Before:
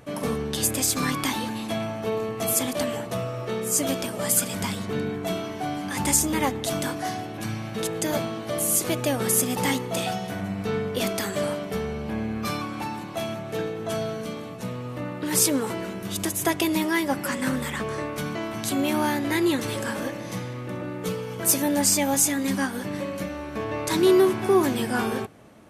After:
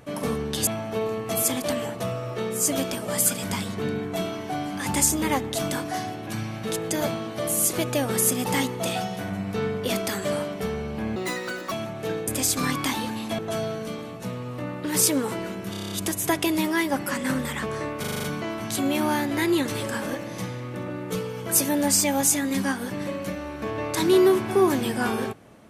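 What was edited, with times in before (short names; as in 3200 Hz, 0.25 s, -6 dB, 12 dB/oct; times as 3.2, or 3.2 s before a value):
0.67–1.78 move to 13.77
12.27–13.21 speed 169%
16.09 stutter 0.03 s, 8 plays
18.17 stutter 0.04 s, 7 plays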